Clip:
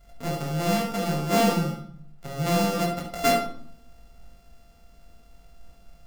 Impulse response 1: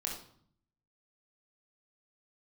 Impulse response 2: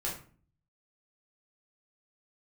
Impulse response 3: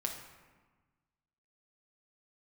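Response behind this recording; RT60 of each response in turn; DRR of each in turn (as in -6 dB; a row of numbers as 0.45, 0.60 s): 1; 0.60, 0.45, 1.3 s; -1.5, -5.0, 1.0 dB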